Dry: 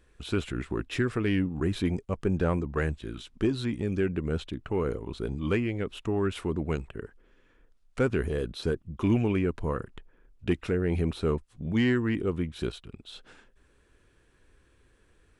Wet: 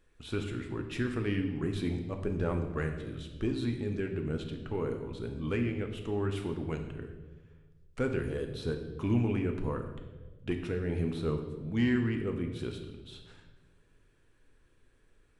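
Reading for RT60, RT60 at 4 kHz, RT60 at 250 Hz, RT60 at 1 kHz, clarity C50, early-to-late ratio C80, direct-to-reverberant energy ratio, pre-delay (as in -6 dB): 1.3 s, 1.0 s, 1.7 s, 1.1 s, 7.0 dB, 9.0 dB, 4.0 dB, 4 ms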